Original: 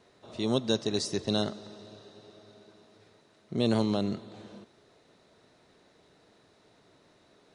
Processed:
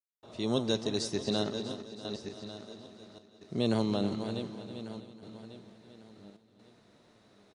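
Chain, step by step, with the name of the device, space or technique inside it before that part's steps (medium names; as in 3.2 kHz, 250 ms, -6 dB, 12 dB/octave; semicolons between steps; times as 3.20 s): backward echo that repeats 573 ms, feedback 48%, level -8 dB; 1.15–2.47 s: low-pass 7 kHz 12 dB/octave; trance gate with a delay (trance gate ".xxxxxxx.xxxxx" 66 bpm -60 dB; feedback delay 323 ms, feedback 57%, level -12.5 dB); trim -2.5 dB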